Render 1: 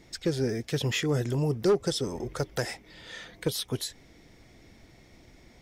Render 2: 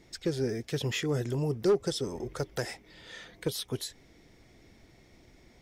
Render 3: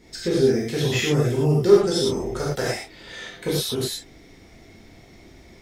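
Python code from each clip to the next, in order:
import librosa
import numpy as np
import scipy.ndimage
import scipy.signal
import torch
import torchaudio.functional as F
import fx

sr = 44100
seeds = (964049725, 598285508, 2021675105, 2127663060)

y1 = fx.peak_eq(x, sr, hz=390.0, db=2.5, octaves=0.39)
y1 = y1 * 10.0 ** (-3.5 / 20.0)
y2 = fx.rev_gated(y1, sr, seeds[0], gate_ms=140, shape='flat', drr_db=-6.5)
y2 = y2 * 10.0 ** (2.5 / 20.0)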